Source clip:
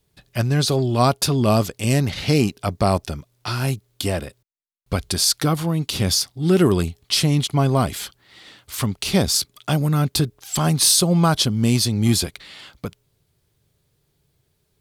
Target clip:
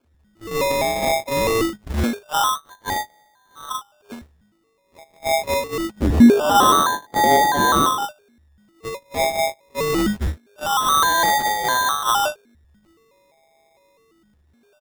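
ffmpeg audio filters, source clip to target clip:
-filter_complex "[0:a]aeval=exprs='val(0)+0.5*0.0944*sgn(val(0))':c=same,highpass=f=110:p=1,equalizer=f=670:t=o:w=0.65:g=-5.5,aeval=exprs='abs(val(0))':c=same,asplit=8[s0][s1][s2][s3][s4][s5][s6][s7];[s1]adelay=134,afreqshift=-51,volume=0.158[s8];[s2]adelay=268,afreqshift=-102,volume=0.101[s9];[s3]adelay=402,afreqshift=-153,volume=0.0646[s10];[s4]adelay=536,afreqshift=-204,volume=0.0417[s11];[s5]adelay=670,afreqshift=-255,volume=0.0266[s12];[s6]adelay=804,afreqshift=-306,volume=0.017[s13];[s7]adelay=938,afreqshift=-357,volume=0.0108[s14];[s0][s8][s9][s10][s11][s12][s13][s14]amix=inputs=8:normalize=0,flanger=delay=6.7:depth=6.6:regen=71:speed=1.5:shape=triangular,lowpass=f=3100:t=q:w=0.5098,lowpass=f=3100:t=q:w=0.6013,lowpass=f=3100:t=q:w=0.9,lowpass=f=3100:t=q:w=2.563,afreqshift=-3600,acrusher=samples=23:mix=1:aa=0.000001:lfo=1:lforange=13.8:lforate=0.24,asplit=3[s15][s16][s17];[s15]afade=t=out:st=6:d=0.02[s18];[s16]equalizer=f=290:t=o:w=2.1:g=13.5,afade=t=in:st=6:d=0.02,afade=t=out:st=8.04:d=0.02[s19];[s17]afade=t=in:st=8.04:d=0.02[s20];[s18][s19][s20]amix=inputs=3:normalize=0,agate=range=0.0355:threshold=0.1:ratio=16:detection=peak,volume=0.891"

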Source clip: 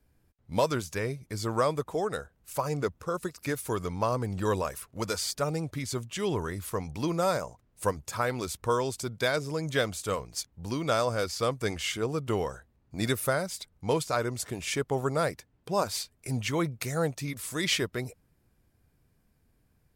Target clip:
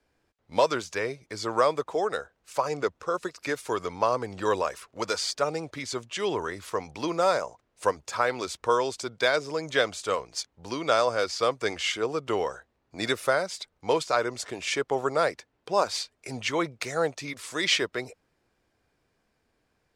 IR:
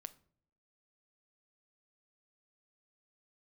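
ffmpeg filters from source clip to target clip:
-filter_complex "[0:a]acrossover=split=320 7400:gain=0.178 1 0.1[s0][s1][s2];[s0][s1][s2]amix=inputs=3:normalize=0,volume=1.68"

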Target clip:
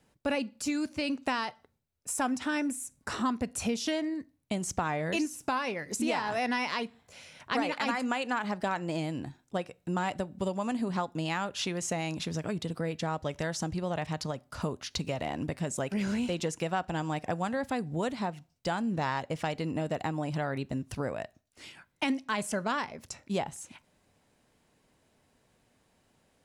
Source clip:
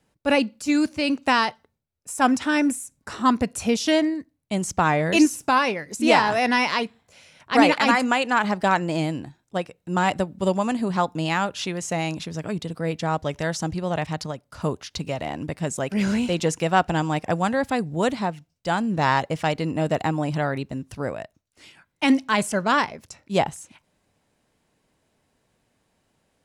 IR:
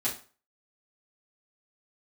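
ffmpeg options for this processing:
-filter_complex "[0:a]acompressor=threshold=0.0316:ratio=4,asplit=2[s0][s1];[1:a]atrim=start_sample=2205[s2];[s1][s2]afir=irnorm=-1:irlink=0,volume=0.0531[s3];[s0][s3]amix=inputs=2:normalize=0"

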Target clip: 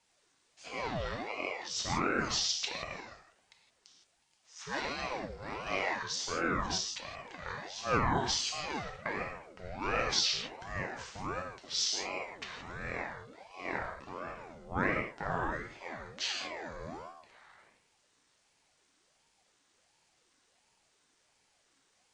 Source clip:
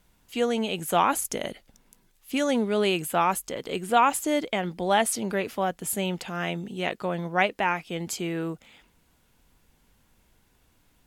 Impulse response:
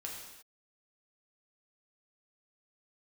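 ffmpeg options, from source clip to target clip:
-filter_complex "[0:a]tiltshelf=f=1200:g=-8,bandreject=f=259.2:t=h:w=4,bandreject=f=518.4:t=h:w=4,bandreject=f=777.6:t=h:w=4,bandreject=f=1036.8:t=h:w=4,bandreject=f=1296:t=h:w=4,bandreject=f=1555.2:t=h:w=4,bandreject=f=1814.4:t=h:w=4[s0];[1:a]atrim=start_sample=2205,atrim=end_sample=3969[s1];[s0][s1]afir=irnorm=-1:irlink=0,asetrate=22050,aresample=44100,aeval=exprs='val(0)*sin(2*PI*600*n/s+600*0.55/1.4*sin(2*PI*1.4*n/s))':c=same,volume=0.631"

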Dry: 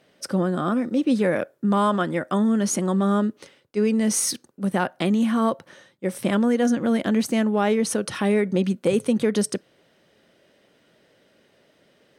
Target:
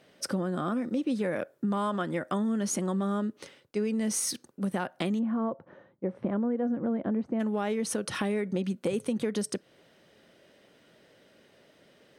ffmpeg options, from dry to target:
-filter_complex "[0:a]asplit=3[s0][s1][s2];[s0]afade=t=out:st=5.18:d=0.02[s3];[s1]lowpass=1000,afade=t=in:st=5.18:d=0.02,afade=t=out:st=7.39:d=0.02[s4];[s2]afade=t=in:st=7.39:d=0.02[s5];[s3][s4][s5]amix=inputs=3:normalize=0,acompressor=threshold=0.0355:ratio=3"

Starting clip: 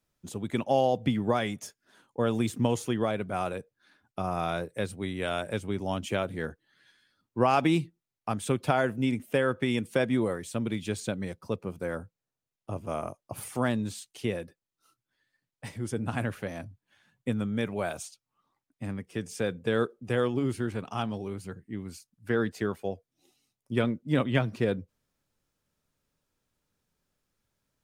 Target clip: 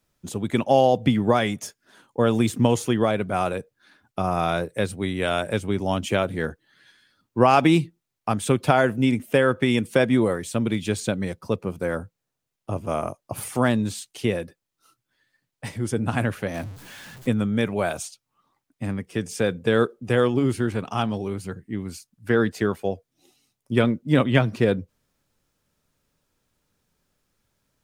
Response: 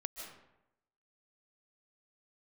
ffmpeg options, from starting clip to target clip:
-filter_complex "[0:a]asettb=1/sr,asplit=3[s0][s1][s2];[s0]atrim=end=16.544[s3];[s1]atrim=start=16.54:end=17.29,asetpts=PTS-STARTPTS,afade=t=in:d=0.004:c=qsin,afade=t=out:st=0.746:d=0.004:c=qsin,aeval=exprs='val(0)+0.5*0.00596*sgn(val(0))':c=same[s4];[s2]atrim=start=17.286[s5];[s3][s4]acrossfade=d=0.004:c1=hsin:c2=qsin[s6];[s6][s5]acrossfade=d=0.004:c1=qsin:c2=hsin,volume=2.24"

